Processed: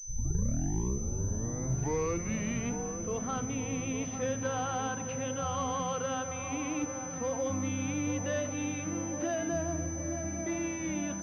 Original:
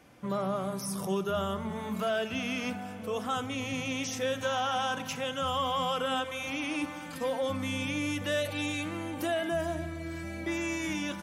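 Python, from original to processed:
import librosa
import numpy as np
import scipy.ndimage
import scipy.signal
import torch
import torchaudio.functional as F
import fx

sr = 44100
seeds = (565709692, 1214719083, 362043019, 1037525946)

p1 = fx.tape_start_head(x, sr, length_s=2.79)
p2 = fx.low_shelf(p1, sr, hz=390.0, db=8.0)
p3 = p2 + fx.echo_wet_lowpass(p2, sr, ms=855, feedback_pct=56, hz=1200.0, wet_db=-8, dry=0)
p4 = fx.pwm(p3, sr, carrier_hz=6100.0)
y = p4 * librosa.db_to_amplitude(-5.5)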